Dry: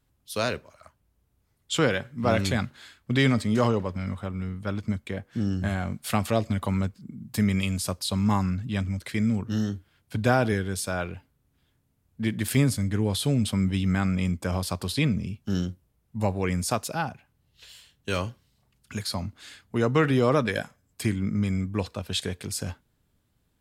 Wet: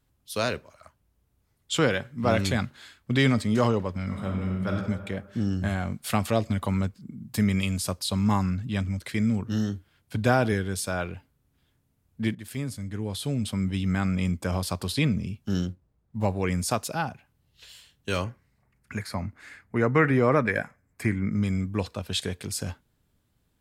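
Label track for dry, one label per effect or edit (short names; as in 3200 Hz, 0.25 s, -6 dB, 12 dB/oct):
4.050000	4.700000	reverb throw, RT60 1.6 s, DRR 0 dB
12.350000	14.290000	fade in linear, from -14.5 dB
15.670000	16.250000	median filter over 15 samples
18.240000	21.320000	resonant high shelf 2600 Hz -7 dB, Q 3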